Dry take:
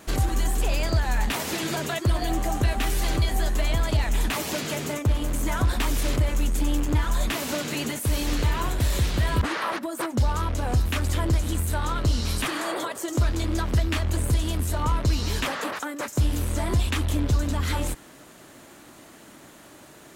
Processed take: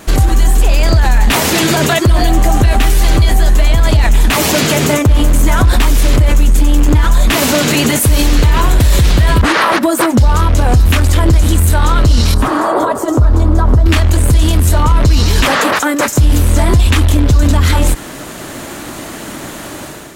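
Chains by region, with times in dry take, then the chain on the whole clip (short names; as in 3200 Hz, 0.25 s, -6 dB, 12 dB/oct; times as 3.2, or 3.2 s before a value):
12.34–13.86 resonant high shelf 1600 Hz -12 dB, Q 1.5 + compressor 3:1, threshold -28 dBFS + notch comb 170 Hz
whole clip: low shelf 75 Hz +6.5 dB; AGC gain up to 9.5 dB; maximiser +13 dB; gain -1 dB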